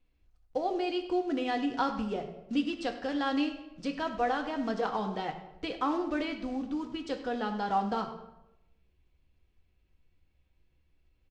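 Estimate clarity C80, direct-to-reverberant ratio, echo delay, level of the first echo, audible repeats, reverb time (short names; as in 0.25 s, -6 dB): 11.0 dB, 3.5 dB, 0.1 s, -15.5 dB, 1, 0.90 s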